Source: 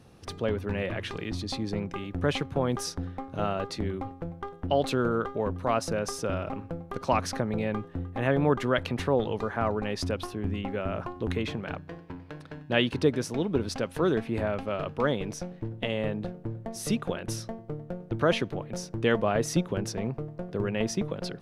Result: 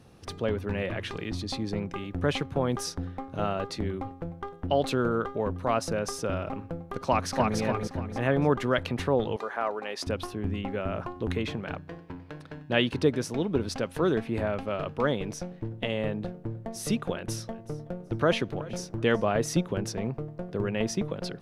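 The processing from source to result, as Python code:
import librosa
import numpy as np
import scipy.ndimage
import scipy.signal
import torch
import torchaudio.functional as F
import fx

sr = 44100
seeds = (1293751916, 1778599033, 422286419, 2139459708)

y = fx.echo_throw(x, sr, start_s=7.03, length_s=0.55, ms=290, feedback_pct=40, wet_db=-2.5)
y = fx.highpass(y, sr, hz=460.0, slope=12, at=(9.36, 10.07))
y = fx.echo_feedback(y, sr, ms=375, feedback_pct=24, wet_db=-20, at=(17.1, 19.27))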